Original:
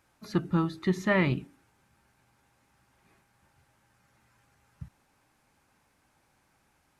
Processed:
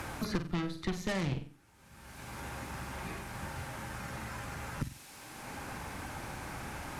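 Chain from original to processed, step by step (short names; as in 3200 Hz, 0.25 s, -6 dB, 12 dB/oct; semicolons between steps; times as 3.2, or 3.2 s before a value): added harmonics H 8 -15 dB, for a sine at -13.5 dBFS; flutter echo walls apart 7.9 m, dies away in 0.31 s; three-band squash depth 100%; gain +3.5 dB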